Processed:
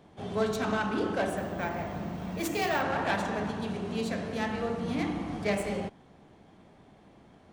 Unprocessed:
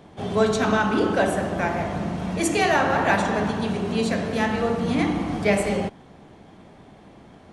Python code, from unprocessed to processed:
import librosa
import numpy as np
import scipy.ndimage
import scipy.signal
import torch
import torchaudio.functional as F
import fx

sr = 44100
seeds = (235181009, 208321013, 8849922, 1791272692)

y = fx.self_delay(x, sr, depth_ms=0.095)
y = fx.resample_bad(y, sr, factor=2, down='none', up='hold', at=(1.37, 2.82))
y = y * librosa.db_to_amplitude(-8.5)